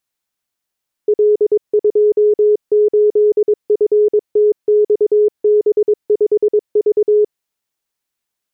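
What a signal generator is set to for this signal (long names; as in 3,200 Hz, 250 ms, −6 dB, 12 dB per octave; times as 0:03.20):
Morse code "L28FTXB5V" 22 words per minute 420 Hz −8 dBFS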